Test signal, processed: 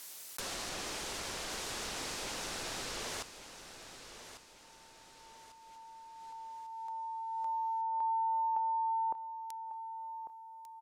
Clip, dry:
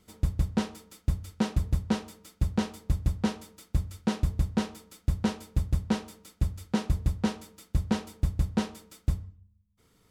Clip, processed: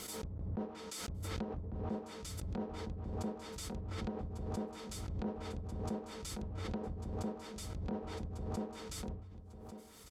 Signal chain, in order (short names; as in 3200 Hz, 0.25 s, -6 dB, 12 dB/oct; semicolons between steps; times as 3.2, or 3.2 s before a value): treble ducked by the level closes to 540 Hz, closed at -24.5 dBFS; reverse; compressor 6:1, threshold -33 dBFS; reverse; tone controls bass -11 dB, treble +7 dB; on a send: feedback echo 1.147 s, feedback 43%, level -11.5 dB; on the sum: backwards sustainer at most 26 dB/s; gain +1.5 dB